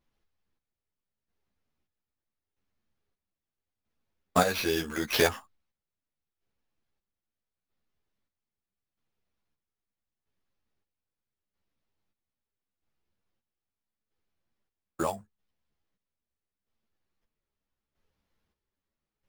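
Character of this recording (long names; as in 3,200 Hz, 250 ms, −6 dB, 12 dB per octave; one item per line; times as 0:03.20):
chopped level 0.78 Hz, depth 65%, duty 45%
aliases and images of a low sample rate 8,300 Hz, jitter 0%
a shimmering, thickened sound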